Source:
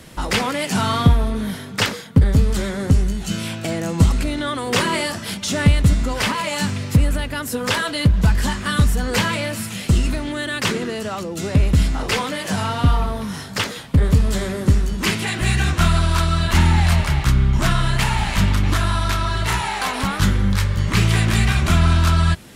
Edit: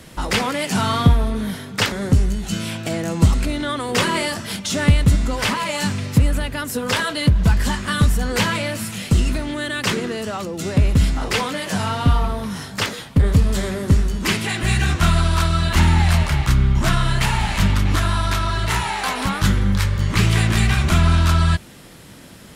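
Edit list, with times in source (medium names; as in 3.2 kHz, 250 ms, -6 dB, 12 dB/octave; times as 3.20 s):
1.92–2.70 s: delete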